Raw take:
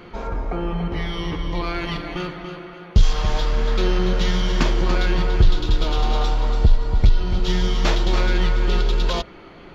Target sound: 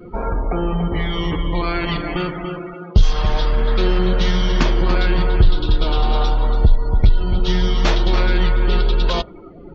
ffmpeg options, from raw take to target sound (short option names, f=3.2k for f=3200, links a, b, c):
-filter_complex "[0:a]afftdn=nr=26:nf=-38,asplit=2[a][b];[b]acompressor=threshold=-26dB:ratio=6,volume=2dB[c];[a][c]amix=inputs=2:normalize=0"